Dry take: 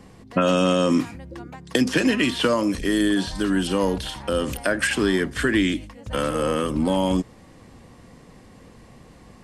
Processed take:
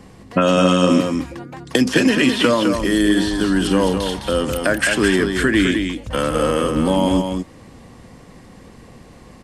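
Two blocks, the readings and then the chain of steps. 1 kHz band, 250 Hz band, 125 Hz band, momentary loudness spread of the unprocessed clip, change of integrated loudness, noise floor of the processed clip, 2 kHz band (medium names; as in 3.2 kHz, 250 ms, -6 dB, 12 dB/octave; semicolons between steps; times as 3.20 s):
+5.0 dB, +5.0 dB, +5.0 dB, 9 LU, +5.0 dB, -44 dBFS, +5.0 dB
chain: delay 209 ms -6 dB; trim +4 dB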